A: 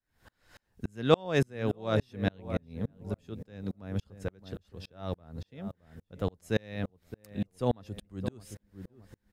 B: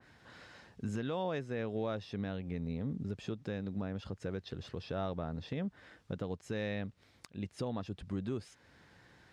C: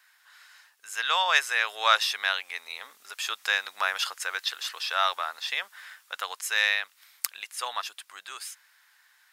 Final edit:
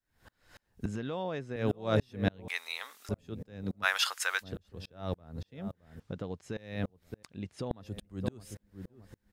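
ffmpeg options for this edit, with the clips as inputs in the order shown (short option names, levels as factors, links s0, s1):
-filter_complex "[1:a]asplit=3[s0][s1][s2];[2:a]asplit=2[s3][s4];[0:a]asplit=6[s5][s6][s7][s8][s9][s10];[s5]atrim=end=0.862[s11];[s0]atrim=start=0.858:end=1.562[s12];[s6]atrim=start=1.558:end=2.482[s13];[s3]atrim=start=2.478:end=3.092[s14];[s7]atrim=start=3.088:end=3.86[s15];[s4]atrim=start=3.82:end=4.44[s16];[s8]atrim=start=4.4:end=6.002[s17];[s1]atrim=start=5.998:end=6.572[s18];[s9]atrim=start=6.568:end=7.232[s19];[s2]atrim=start=7.228:end=7.712[s20];[s10]atrim=start=7.708[s21];[s11][s12]acrossfade=d=0.004:c1=hsin:c2=hsin[s22];[s22][s13]acrossfade=d=0.004:c1=hsin:c2=hsin[s23];[s23][s14]acrossfade=d=0.004:c1=hsin:c2=hsin[s24];[s24][s15]acrossfade=d=0.004:c1=hsin:c2=hsin[s25];[s25][s16]acrossfade=d=0.04:c1=tri:c2=tri[s26];[s26][s17]acrossfade=d=0.04:c1=tri:c2=tri[s27];[s27][s18]acrossfade=d=0.004:c1=hsin:c2=hsin[s28];[s28][s19]acrossfade=d=0.004:c1=hsin:c2=hsin[s29];[s29][s20]acrossfade=d=0.004:c1=hsin:c2=hsin[s30];[s30][s21]acrossfade=d=0.004:c1=hsin:c2=hsin"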